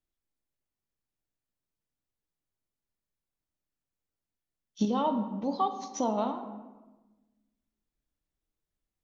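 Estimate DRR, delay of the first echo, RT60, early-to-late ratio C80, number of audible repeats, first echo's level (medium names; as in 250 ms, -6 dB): 6.5 dB, no echo, 1.2 s, 11.0 dB, no echo, no echo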